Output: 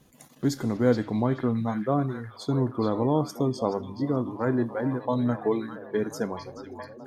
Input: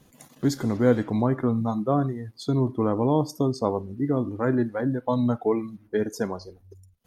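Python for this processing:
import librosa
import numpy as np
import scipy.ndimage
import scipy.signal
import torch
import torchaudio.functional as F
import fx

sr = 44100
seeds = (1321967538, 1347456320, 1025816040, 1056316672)

p1 = fx.hum_notches(x, sr, base_hz=50, count=2)
p2 = p1 + fx.echo_stepped(p1, sr, ms=427, hz=3200.0, octaves=-0.7, feedback_pct=70, wet_db=-3, dry=0)
y = p2 * librosa.db_to_amplitude(-2.0)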